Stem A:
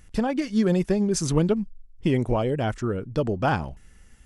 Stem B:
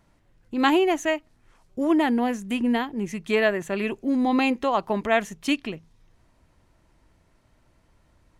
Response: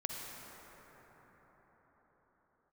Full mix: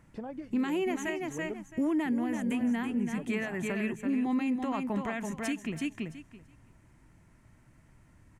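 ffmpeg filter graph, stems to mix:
-filter_complex "[0:a]bandpass=f=480:t=q:w=0.56:csg=0,acompressor=threshold=-50dB:ratio=1.5,volume=-4.5dB[a];[1:a]equalizer=f=125:t=o:w=1:g=9,equalizer=f=250:t=o:w=1:g=5,equalizer=f=500:t=o:w=1:g=-4,equalizer=f=2k:t=o:w=1:g=6,equalizer=f=4k:t=o:w=1:g=-8,equalizer=f=8k:t=o:w=1:g=6,acrossover=split=300|3000[b][c][d];[c]acompressor=threshold=-20dB:ratio=6[e];[b][e][d]amix=inputs=3:normalize=0,alimiter=limit=-13dB:level=0:latency=1:release=99,volume=-2.5dB,asplit=2[f][g];[g]volume=-6dB,aecho=0:1:333|666|999:1|0.16|0.0256[h];[a][f][h]amix=inputs=3:normalize=0,alimiter=limit=-22.5dB:level=0:latency=1:release=485"

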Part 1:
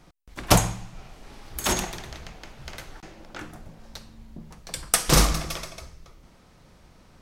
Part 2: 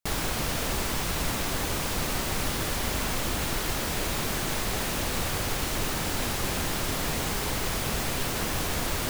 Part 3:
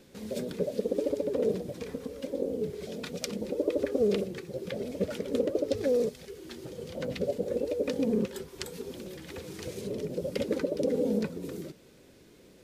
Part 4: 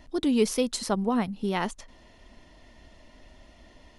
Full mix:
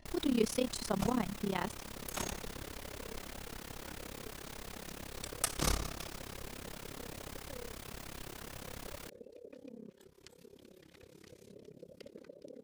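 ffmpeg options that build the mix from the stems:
-filter_complex "[0:a]adelay=500,volume=-10.5dB[a];[1:a]volume=-14.5dB[b];[2:a]acompressor=threshold=-41dB:ratio=2,adelay=1650,volume=-10.5dB[c];[3:a]volume=-4dB,asplit=2[d][e];[e]apad=whole_len=344775[f];[a][f]sidechaincompress=threshold=-37dB:ratio=8:attack=16:release=227[g];[g][b][c][d]amix=inputs=4:normalize=0,tremolo=f=34:d=0.919"

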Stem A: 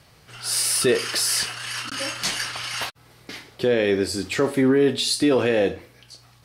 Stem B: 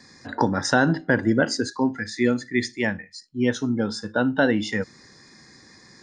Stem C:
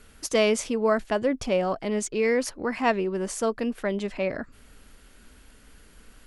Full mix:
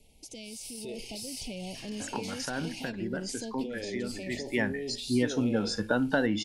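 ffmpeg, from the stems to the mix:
-filter_complex "[0:a]volume=-19dB[a];[1:a]acompressor=threshold=-34dB:ratio=2.5,adelay=1750,volume=0.5dB[b];[2:a]acrossover=split=210|3000[c][d][e];[d]acompressor=threshold=-40dB:ratio=6[f];[c][f][e]amix=inputs=3:normalize=0,volume=-8dB,asplit=2[g][h];[h]apad=whole_len=342830[i];[b][i]sidechaincompress=threshold=-51dB:ratio=5:attack=28:release=288[j];[a][g]amix=inputs=2:normalize=0,asuperstop=centerf=1400:order=12:qfactor=1.1,alimiter=level_in=11dB:limit=-24dB:level=0:latency=1:release=24,volume=-11dB,volume=0dB[k];[j][k]amix=inputs=2:normalize=0,dynaudnorm=f=310:g=5:m=5dB"

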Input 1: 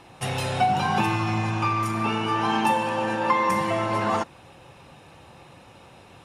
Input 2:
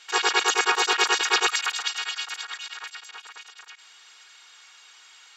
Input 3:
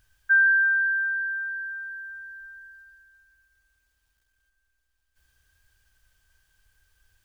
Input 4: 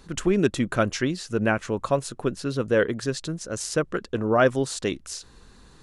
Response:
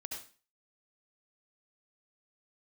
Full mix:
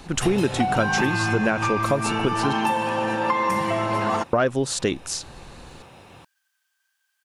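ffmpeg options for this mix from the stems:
-filter_complex "[0:a]volume=2dB[a];[2:a]highpass=f=780:w=0.5412,highpass=f=780:w=1.3066,adelay=500,volume=-4dB[b];[3:a]acontrast=34,volume=1dB,asplit=3[c][d][e];[c]atrim=end=2.53,asetpts=PTS-STARTPTS,afade=t=out:st=2.526:d=0.004:c=hsin[f];[d]atrim=start=2.53:end=4.33,asetpts=PTS-STARTPTS,volume=0[g];[e]atrim=start=4.33,asetpts=PTS-STARTPTS,afade=t=in:d=0.004:c=hsin[h];[f][g][h]concat=n=3:v=0:a=1[i];[a][b][i]amix=inputs=3:normalize=0,acompressor=threshold=-18dB:ratio=4"

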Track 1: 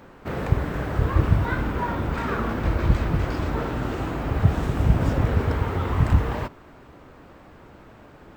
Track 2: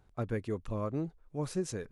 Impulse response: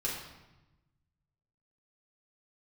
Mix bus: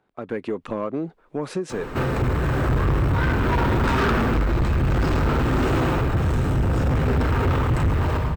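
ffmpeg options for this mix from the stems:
-filter_complex "[0:a]adelay=1700,volume=-6.5dB,asplit=3[a][b][c];[b]volume=-4dB[d];[c]volume=-6dB[e];[1:a]acrossover=split=180 3800:gain=0.0631 1 0.178[f][g][h];[f][g][h]amix=inputs=3:normalize=0,acompressor=threshold=-39dB:ratio=10,volume=2.5dB[i];[2:a]atrim=start_sample=2205[j];[d][j]afir=irnorm=-1:irlink=0[k];[e]aecho=0:1:113|226|339|452|565:1|0.39|0.152|0.0593|0.0231[l];[a][i][k][l]amix=inputs=4:normalize=0,equalizer=f=8.2k:w=3.9:g=3.5,dynaudnorm=f=160:g=3:m=15.5dB,asoftclip=type=tanh:threshold=-16.5dB"

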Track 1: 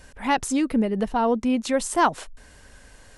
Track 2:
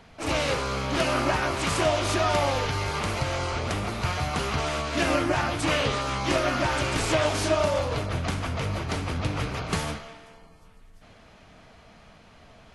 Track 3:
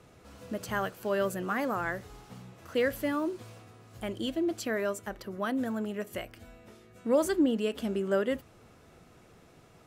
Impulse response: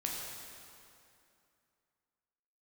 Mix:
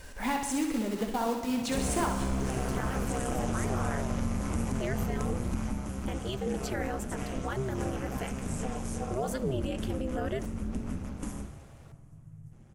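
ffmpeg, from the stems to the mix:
-filter_complex "[0:a]acompressor=threshold=-29dB:ratio=10,acrusher=bits=3:mode=log:mix=0:aa=0.000001,flanger=delay=2:depth=6.6:regen=-61:speed=1.4:shape=sinusoidal,volume=1dB,asplit=3[a][b][c];[b]volume=-5dB[d];[c]volume=-3.5dB[e];[1:a]aexciter=amount=8.2:drive=9.4:freq=6.4k,dynaudnorm=f=1000:g=3:m=11.5dB,aemphasis=mode=reproduction:type=riaa,adelay=1500,volume=-8dB,afade=t=out:st=5.28:d=0.59:silence=0.354813,asplit=2[f][g];[g]volume=-15dB[h];[2:a]adelay=2050,volume=1.5dB,asplit=2[i][j];[j]volume=-23.5dB[k];[f][i]amix=inputs=2:normalize=0,aeval=exprs='val(0)*sin(2*PI*130*n/s)':c=same,alimiter=limit=-22.5dB:level=0:latency=1:release=56,volume=0dB[l];[3:a]atrim=start_sample=2205[m];[d][h][k]amix=inputs=3:normalize=0[n];[n][m]afir=irnorm=-1:irlink=0[o];[e]aecho=0:1:64|128|192|256|320|384|448|512:1|0.53|0.281|0.149|0.0789|0.0418|0.0222|0.0117[p];[a][l][o][p]amix=inputs=4:normalize=0"

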